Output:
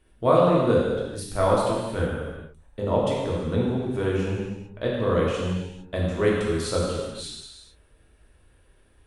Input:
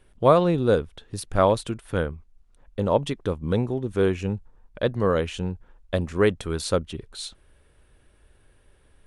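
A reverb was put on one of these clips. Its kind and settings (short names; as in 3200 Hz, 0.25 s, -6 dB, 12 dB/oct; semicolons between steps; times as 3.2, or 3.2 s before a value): non-linear reverb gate 0.48 s falling, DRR -5 dB; gain -6 dB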